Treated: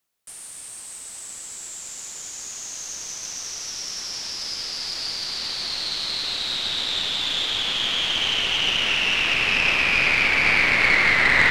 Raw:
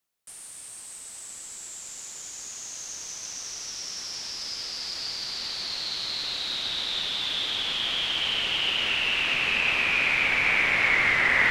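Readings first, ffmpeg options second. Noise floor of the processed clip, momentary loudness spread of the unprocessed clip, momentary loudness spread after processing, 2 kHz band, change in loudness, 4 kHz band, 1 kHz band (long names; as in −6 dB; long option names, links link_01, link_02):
−39 dBFS, 17 LU, 18 LU, +4.0 dB, +4.0 dB, +4.0 dB, +4.5 dB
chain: -af "aeval=exprs='0.376*(cos(1*acos(clip(val(0)/0.376,-1,1)))-cos(1*PI/2))+0.0422*(cos(4*acos(clip(val(0)/0.376,-1,1)))-cos(4*PI/2))':channel_layout=same,volume=4dB"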